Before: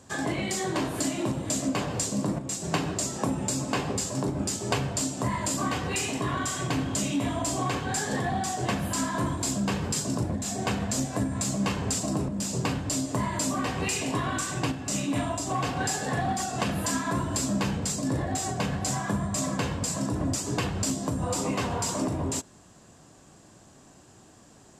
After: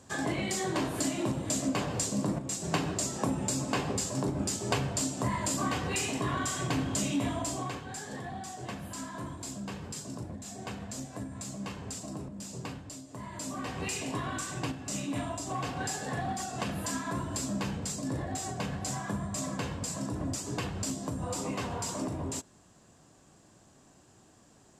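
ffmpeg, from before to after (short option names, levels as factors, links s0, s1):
-af "volume=3.16,afade=t=out:st=7.22:d=0.63:silence=0.354813,afade=t=out:st=12.69:d=0.36:silence=0.446684,afade=t=in:st=13.05:d=0.81:silence=0.237137"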